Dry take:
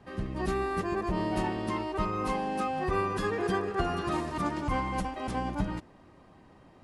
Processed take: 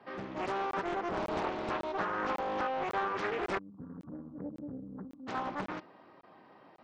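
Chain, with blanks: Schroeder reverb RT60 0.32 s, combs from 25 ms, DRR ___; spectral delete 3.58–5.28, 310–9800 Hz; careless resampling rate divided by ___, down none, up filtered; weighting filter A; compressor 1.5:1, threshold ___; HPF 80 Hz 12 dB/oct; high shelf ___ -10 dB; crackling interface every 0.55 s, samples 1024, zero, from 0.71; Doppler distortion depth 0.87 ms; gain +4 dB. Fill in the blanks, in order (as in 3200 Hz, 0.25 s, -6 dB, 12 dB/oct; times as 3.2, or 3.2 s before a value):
19.5 dB, 4×, -38 dBFS, 2300 Hz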